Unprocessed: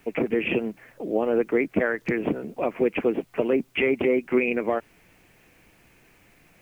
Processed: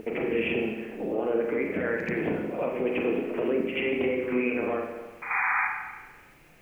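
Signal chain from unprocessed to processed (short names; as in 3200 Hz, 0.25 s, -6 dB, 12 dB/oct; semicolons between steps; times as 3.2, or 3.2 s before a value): limiter -19 dBFS, peak gain reduction 10.5 dB; painted sound noise, 5.3–5.67, 720–2500 Hz -27 dBFS; reverse echo 84 ms -8.5 dB; spring tank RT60 1.2 s, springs 32/43 ms, chirp 60 ms, DRR 1 dB; gain -1.5 dB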